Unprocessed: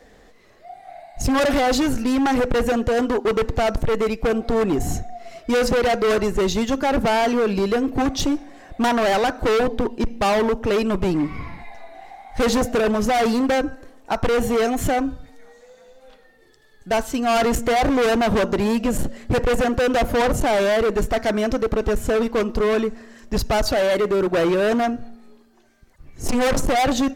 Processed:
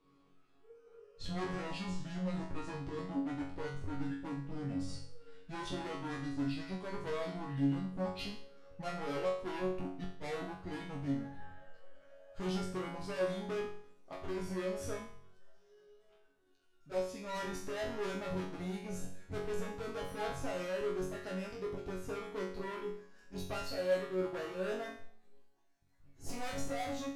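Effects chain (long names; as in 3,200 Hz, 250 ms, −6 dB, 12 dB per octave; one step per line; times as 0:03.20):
pitch glide at a constant tempo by −8 semitones ending unshifted
resonators tuned to a chord F#2 fifth, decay 0.54 s
level −3 dB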